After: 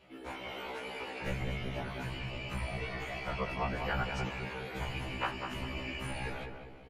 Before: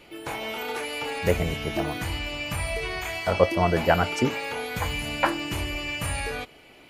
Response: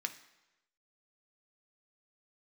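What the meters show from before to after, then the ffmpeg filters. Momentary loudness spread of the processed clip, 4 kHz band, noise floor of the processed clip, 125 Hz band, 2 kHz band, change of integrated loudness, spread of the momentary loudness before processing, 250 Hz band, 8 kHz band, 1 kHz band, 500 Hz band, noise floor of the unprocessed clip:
6 LU, −11.0 dB, −48 dBFS, −8.5 dB, −9.5 dB, −11.0 dB, 9 LU, −11.5 dB, −17.0 dB, −10.5 dB, −14.5 dB, −51 dBFS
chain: -filter_complex "[0:a]aemphasis=mode=reproduction:type=50kf,acrossover=split=160|790|5900[link_01][link_02][link_03][link_04];[link_02]acompressor=threshold=-36dB:ratio=6[link_05];[link_01][link_05][link_03][link_04]amix=inputs=4:normalize=0,afftfilt=real='hypot(re,im)*cos(2*PI*random(0))':imag='hypot(re,im)*sin(2*PI*random(1))':win_size=512:overlap=0.75,asplit=2[link_06][link_07];[link_07]adelay=198,lowpass=frequency=1200:poles=1,volume=-4dB,asplit=2[link_08][link_09];[link_09]adelay=198,lowpass=frequency=1200:poles=1,volume=0.53,asplit=2[link_10][link_11];[link_11]adelay=198,lowpass=frequency=1200:poles=1,volume=0.53,asplit=2[link_12][link_13];[link_13]adelay=198,lowpass=frequency=1200:poles=1,volume=0.53,asplit=2[link_14][link_15];[link_15]adelay=198,lowpass=frequency=1200:poles=1,volume=0.53,asplit=2[link_16][link_17];[link_17]adelay=198,lowpass=frequency=1200:poles=1,volume=0.53,asplit=2[link_18][link_19];[link_19]adelay=198,lowpass=frequency=1200:poles=1,volume=0.53[link_20];[link_06][link_08][link_10][link_12][link_14][link_16][link_18][link_20]amix=inputs=8:normalize=0,afftfilt=real='re*1.73*eq(mod(b,3),0)':imag='im*1.73*eq(mod(b,3),0)':win_size=2048:overlap=0.75"

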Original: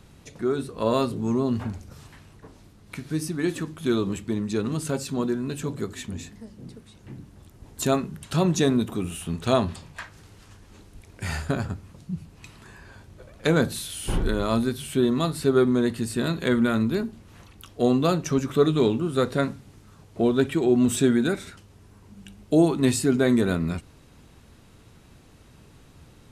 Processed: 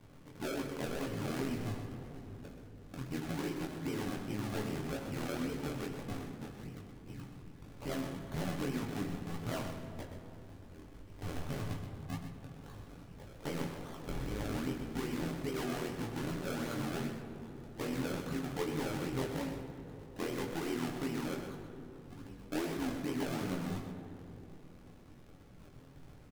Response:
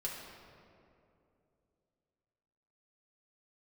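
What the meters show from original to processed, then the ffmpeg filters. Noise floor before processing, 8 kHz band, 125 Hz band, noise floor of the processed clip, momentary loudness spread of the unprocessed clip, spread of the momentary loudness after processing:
−52 dBFS, −14.5 dB, −11.5 dB, −55 dBFS, 16 LU, 16 LU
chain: -filter_complex "[0:a]acompressor=threshold=-26dB:ratio=6,asoftclip=type=tanh:threshold=-26.5dB,tremolo=f=82:d=0.889,adynamicsmooth=sensitivity=4.5:basefreq=2700,acrusher=samples=32:mix=1:aa=0.000001:lfo=1:lforange=32:lforate=2.5,flanger=delay=18:depth=5:speed=1.8,aecho=1:1:126:0.335,asplit=2[link_01][link_02];[1:a]atrim=start_sample=2205,asetrate=32634,aresample=44100[link_03];[link_02][link_03]afir=irnorm=-1:irlink=0,volume=-3.5dB[link_04];[link_01][link_04]amix=inputs=2:normalize=0,volume=-2.5dB"

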